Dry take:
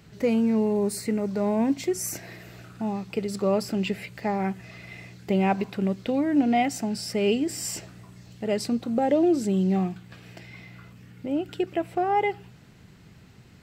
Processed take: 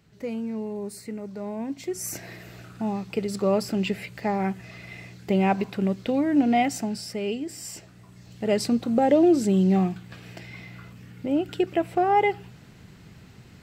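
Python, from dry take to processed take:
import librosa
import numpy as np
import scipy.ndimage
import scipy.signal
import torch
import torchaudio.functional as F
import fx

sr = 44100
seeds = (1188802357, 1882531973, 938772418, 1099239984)

y = fx.gain(x, sr, db=fx.line((1.68, -8.5), (2.2, 1.0), (6.77, 1.0), (7.27, -6.0), (7.84, -6.0), (8.49, 3.0)))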